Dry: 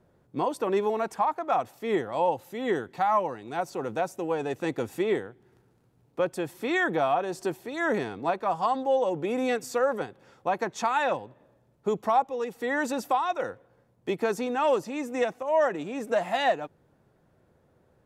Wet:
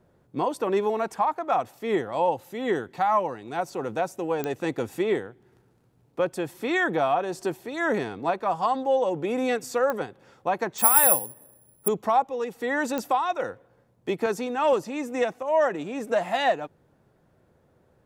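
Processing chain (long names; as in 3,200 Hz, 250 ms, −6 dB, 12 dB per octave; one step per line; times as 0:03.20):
0:10.78–0:11.88: bad sample-rate conversion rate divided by 4×, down filtered, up zero stuff
digital clicks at 0:04.44/0:09.90/0:12.98, −16 dBFS
0:14.26–0:14.73: multiband upward and downward expander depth 40%
level +1.5 dB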